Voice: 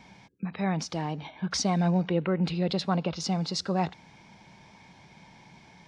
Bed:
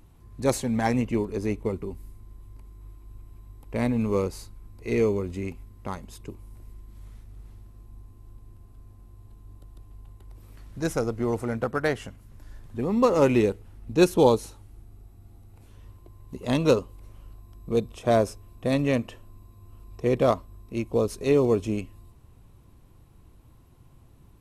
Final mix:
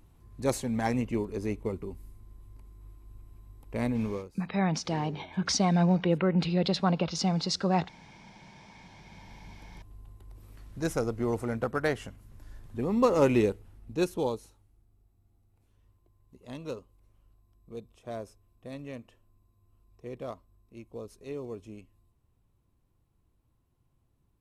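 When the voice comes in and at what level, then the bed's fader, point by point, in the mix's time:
3.95 s, +1.0 dB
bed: 4.06 s -4.5 dB
4.32 s -21.5 dB
8.61 s -21.5 dB
9.35 s -3 dB
13.46 s -3 dB
14.78 s -17.5 dB

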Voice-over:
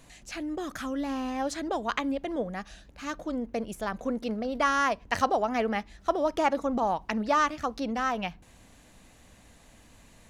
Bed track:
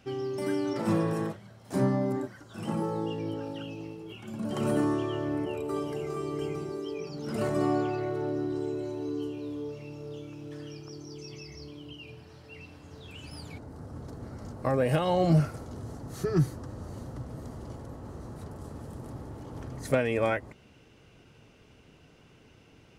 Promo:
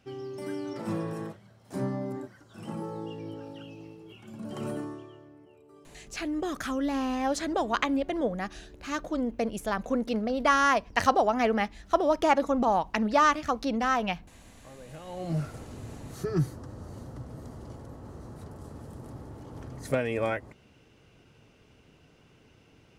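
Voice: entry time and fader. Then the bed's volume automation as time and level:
5.85 s, +2.5 dB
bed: 4.65 s -5.5 dB
5.35 s -23 dB
14.81 s -23 dB
15.56 s -2 dB

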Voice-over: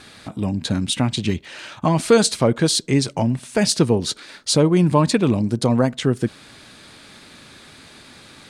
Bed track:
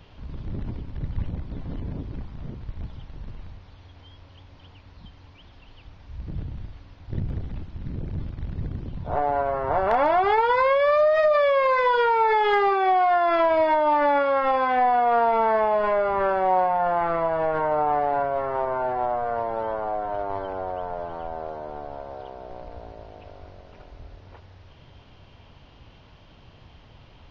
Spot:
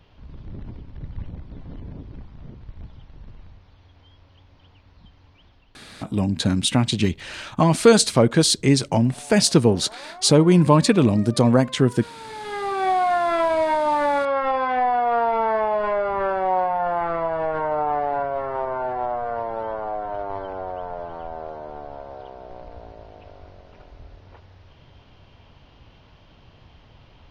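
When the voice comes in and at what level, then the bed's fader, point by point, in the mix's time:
5.75 s, +1.0 dB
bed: 5.47 s -4.5 dB
6.27 s -22 dB
12.17 s -22 dB
12.84 s -0.5 dB

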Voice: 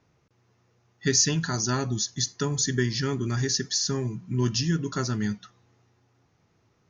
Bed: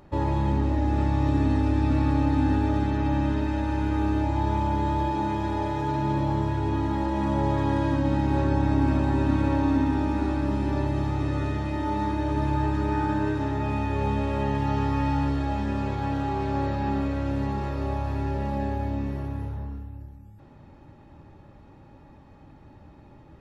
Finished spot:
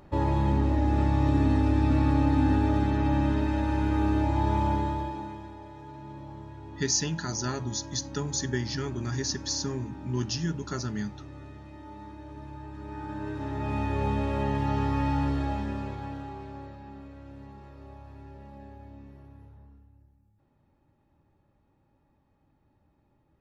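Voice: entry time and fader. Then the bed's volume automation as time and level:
5.75 s, -5.0 dB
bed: 4.71 s -0.5 dB
5.58 s -17.5 dB
12.65 s -17.5 dB
13.80 s -2 dB
15.45 s -2 dB
16.85 s -18.5 dB

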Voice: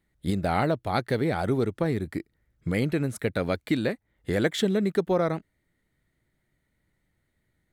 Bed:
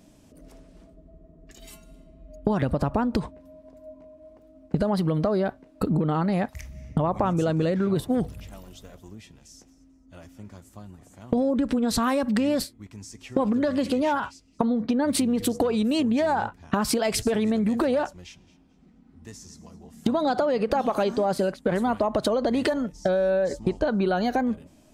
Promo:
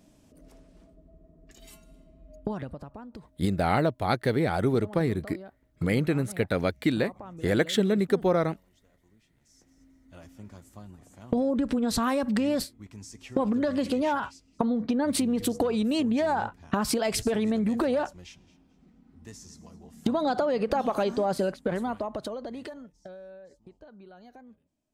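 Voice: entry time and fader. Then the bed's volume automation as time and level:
3.15 s, +0.5 dB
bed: 2.37 s -4.5 dB
2.89 s -19.5 dB
9.32 s -19.5 dB
9.82 s -2.5 dB
21.54 s -2.5 dB
23.54 s -26.5 dB

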